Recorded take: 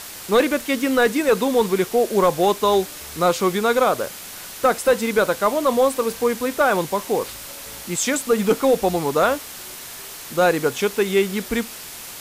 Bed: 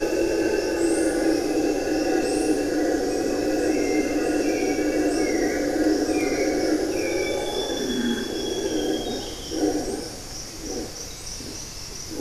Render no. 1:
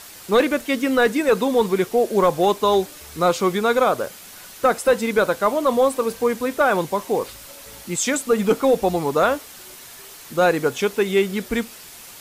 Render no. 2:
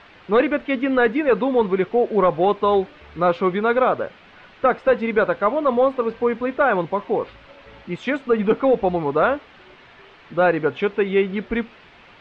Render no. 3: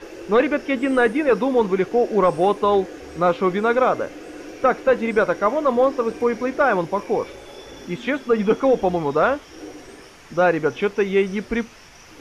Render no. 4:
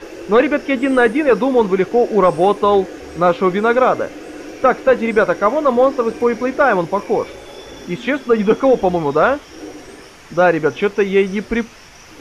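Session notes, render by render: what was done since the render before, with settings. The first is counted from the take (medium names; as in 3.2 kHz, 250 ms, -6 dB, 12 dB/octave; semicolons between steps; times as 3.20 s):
noise reduction 6 dB, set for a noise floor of -36 dBFS
low-pass 2.9 kHz 24 dB/octave
add bed -14.5 dB
trim +4.5 dB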